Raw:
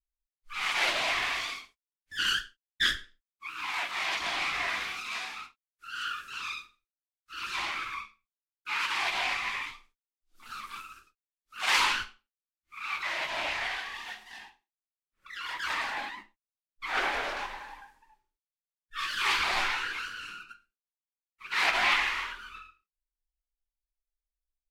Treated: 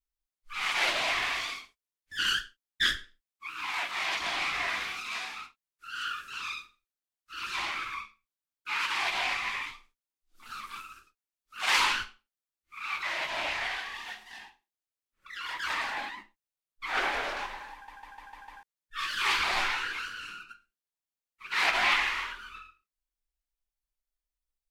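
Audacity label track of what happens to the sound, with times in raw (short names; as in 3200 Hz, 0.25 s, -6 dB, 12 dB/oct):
17.730000	17.730000	stutter in place 0.15 s, 6 plays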